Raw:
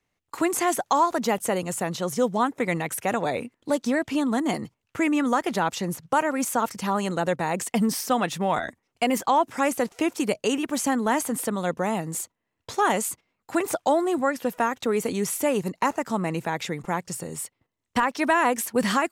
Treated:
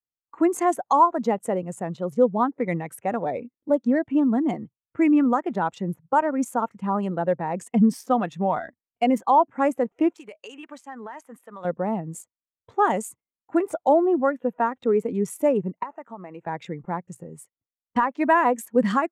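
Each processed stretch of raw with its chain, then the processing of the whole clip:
0:10.14–0:11.65: spectral tilt +3 dB per octave + downward compressor 12 to 1, threshold −28 dBFS + mid-hump overdrive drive 8 dB, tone 3,700 Hz, clips at −15.5 dBFS
0:15.83–0:16.47: high-pass filter 580 Hz 6 dB per octave + downward compressor 8 to 1, threshold −26 dBFS
whole clip: adaptive Wiener filter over 9 samples; dynamic equaliser 7,100 Hz, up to +3 dB, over −46 dBFS, Q 2.9; every bin expanded away from the loudest bin 1.5 to 1; level +3.5 dB

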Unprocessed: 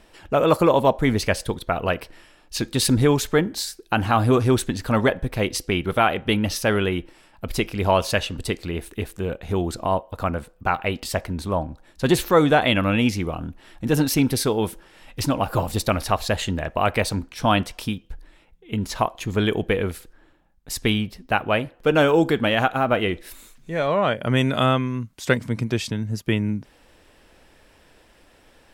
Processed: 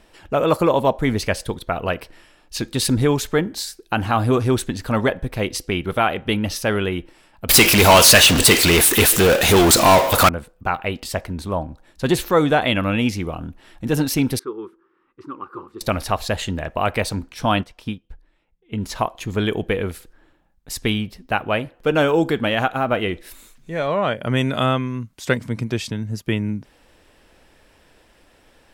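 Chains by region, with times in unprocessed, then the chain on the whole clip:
0:07.49–0:10.29: spectral tilt +3.5 dB per octave + power curve on the samples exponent 0.35
0:14.39–0:15.81: pair of resonant band-passes 660 Hz, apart 1.7 octaves + one half of a high-frequency compander decoder only
0:17.61–0:18.80: high-shelf EQ 6,000 Hz −10 dB + expander for the loud parts, over −44 dBFS
whole clip: no processing

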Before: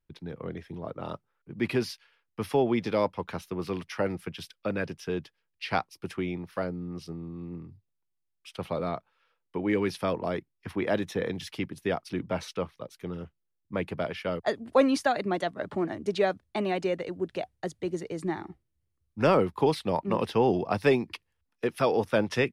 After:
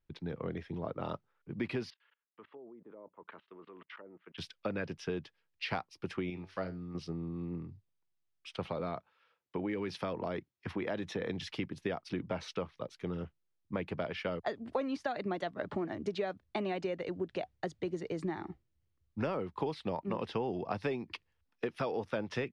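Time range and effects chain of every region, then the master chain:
0:01.90–0:04.38: treble cut that deepens with the level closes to 580 Hz, closed at −24 dBFS + output level in coarse steps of 22 dB + loudspeaker in its box 430–3,000 Hz, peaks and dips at 520 Hz −5 dB, 770 Hz −9 dB, 1,600 Hz −3 dB, 2,400 Hz −8 dB
0:06.30–0:06.95: low-pass filter 8,600 Hz + high-shelf EQ 2,500 Hz +8 dB + tuned comb filter 95 Hz, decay 0.26 s, mix 70%
0:08.69–0:11.29: high-pass filter 56 Hz + downward compressor 2 to 1, threshold −31 dBFS
whole clip: de-essing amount 90%; low-pass filter 5,300 Hz 12 dB per octave; downward compressor 6 to 1, threshold −32 dBFS

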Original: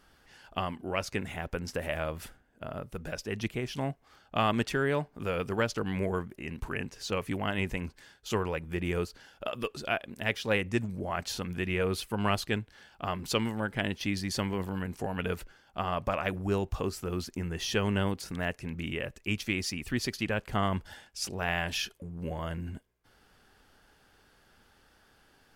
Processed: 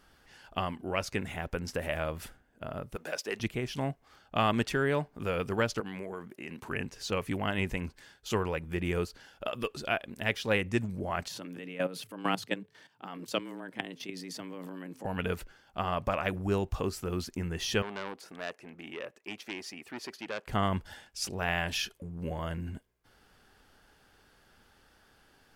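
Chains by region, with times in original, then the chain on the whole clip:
0:02.96–0:03.40: high-pass filter 400 Hz + leveller curve on the samples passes 1
0:05.80–0:06.69: high-pass filter 200 Hz + downward compressor 5 to 1, threshold −35 dBFS
0:11.28–0:15.05: hum removal 172.2 Hz, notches 2 + output level in coarse steps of 14 dB + frequency shifter +87 Hz
0:17.82–0:20.47: high-pass filter 390 Hz + high-shelf EQ 2,300 Hz −11 dB + saturating transformer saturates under 2,000 Hz
whole clip: no processing

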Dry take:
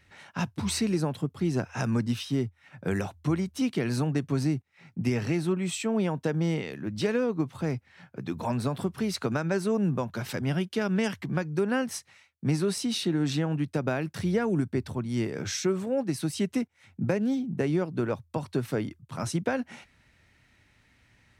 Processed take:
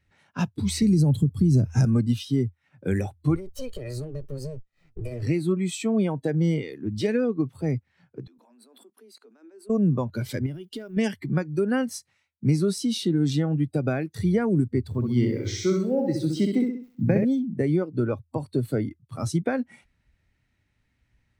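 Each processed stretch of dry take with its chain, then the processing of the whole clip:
0:00.82–0:01.85: bass and treble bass +12 dB, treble +7 dB + downward compressor 10 to 1, threshold −20 dBFS
0:03.35–0:05.23: lower of the sound and its delayed copy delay 1.6 ms + downward compressor 10 to 1, threshold −31 dBFS
0:08.27–0:09.70: Butterworth high-pass 220 Hz 96 dB per octave + output level in coarse steps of 24 dB
0:10.46–0:10.97: one scale factor per block 7 bits + downward compressor 10 to 1, threshold −32 dBFS
0:14.88–0:17.25: low-pass filter 5,500 Hz + centre clipping without the shift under −50 dBFS + repeating echo 65 ms, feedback 51%, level −4 dB
whole clip: noise reduction from a noise print of the clip's start 13 dB; low-shelf EQ 300 Hz +7.5 dB

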